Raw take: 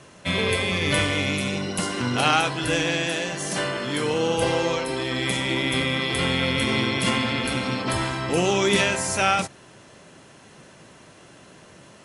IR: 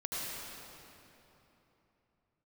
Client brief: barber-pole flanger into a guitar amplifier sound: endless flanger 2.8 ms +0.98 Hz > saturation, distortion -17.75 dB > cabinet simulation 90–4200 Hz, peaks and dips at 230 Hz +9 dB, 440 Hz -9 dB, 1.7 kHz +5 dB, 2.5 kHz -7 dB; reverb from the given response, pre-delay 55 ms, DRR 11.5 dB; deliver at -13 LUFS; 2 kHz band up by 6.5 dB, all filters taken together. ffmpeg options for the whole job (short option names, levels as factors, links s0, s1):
-filter_complex "[0:a]equalizer=f=2000:t=o:g=8,asplit=2[s0][s1];[1:a]atrim=start_sample=2205,adelay=55[s2];[s1][s2]afir=irnorm=-1:irlink=0,volume=0.168[s3];[s0][s3]amix=inputs=2:normalize=0,asplit=2[s4][s5];[s5]adelay=2.8,afreqshift=0.98[s6];[s4][s6]amix=inputs=2:normalize=1,asoftclip=threshold=0.178,highpass=90,equalizer=f=230:t=q:w=4:g=9,equalizer=f=440:t=q:w=4:g=-9,equalizer=f=1700:t=q:w=4:g=5,equalizer=f=2500:t=q:w=4:g=-7,lowpass=f=4200:w=0.5412,lowpass=f=4200:w=1.3066,volume=3.76"